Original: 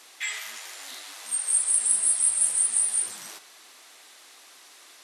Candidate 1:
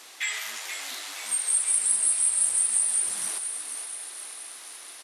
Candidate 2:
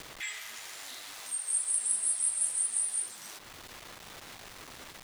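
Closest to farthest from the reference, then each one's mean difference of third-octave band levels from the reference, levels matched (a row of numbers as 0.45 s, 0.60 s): 1, 2; 3.0 dB, 6.5 dB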